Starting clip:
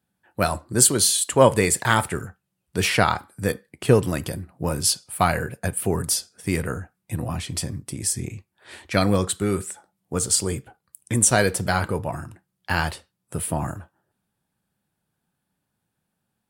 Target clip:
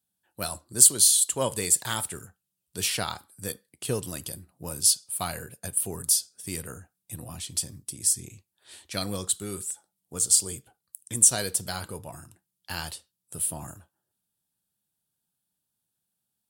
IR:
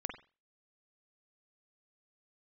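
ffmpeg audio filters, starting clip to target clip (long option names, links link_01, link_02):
-af "aexciter=amount=4.6:drive=3.1:freq=3000,volume=-13dB"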